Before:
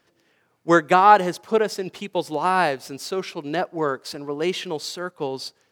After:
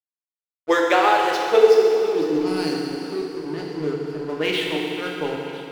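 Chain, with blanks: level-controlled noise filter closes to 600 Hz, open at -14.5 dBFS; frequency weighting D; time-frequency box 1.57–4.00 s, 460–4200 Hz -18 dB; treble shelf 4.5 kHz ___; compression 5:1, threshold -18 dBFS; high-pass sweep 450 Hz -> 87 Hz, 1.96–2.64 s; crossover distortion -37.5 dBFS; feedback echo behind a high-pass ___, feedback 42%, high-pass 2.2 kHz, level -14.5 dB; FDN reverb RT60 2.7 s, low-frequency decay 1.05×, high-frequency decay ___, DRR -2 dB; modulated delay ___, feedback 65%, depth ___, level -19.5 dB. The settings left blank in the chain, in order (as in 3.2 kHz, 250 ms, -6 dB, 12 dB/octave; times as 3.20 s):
-5.5 dB, 502 ms, 0.95×, 501 ms, 185 cents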